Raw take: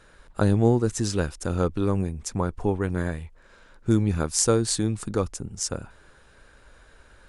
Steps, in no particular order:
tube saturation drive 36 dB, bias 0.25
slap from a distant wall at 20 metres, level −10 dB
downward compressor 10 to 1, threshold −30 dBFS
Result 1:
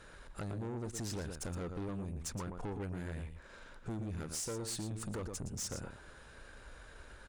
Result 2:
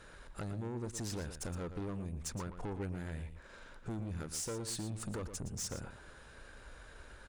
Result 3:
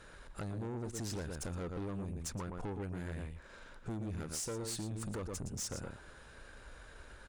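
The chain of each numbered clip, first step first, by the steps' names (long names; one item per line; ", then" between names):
downward compressor, then slap from a distant wall, then tube saturation
downward compressor, then tube saturation, then slap from a distant wall
slap from a distant wall, then downward compressor, then tube saturation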